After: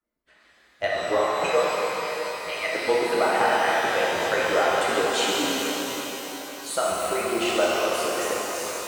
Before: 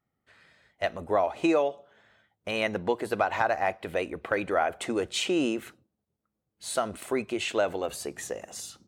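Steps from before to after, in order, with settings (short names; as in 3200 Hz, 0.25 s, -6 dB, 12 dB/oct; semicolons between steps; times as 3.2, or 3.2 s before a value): median-filter separation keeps percussive; shimmer reverb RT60 3.9 s, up +12 st, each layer -8 dB, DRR -6.5 dB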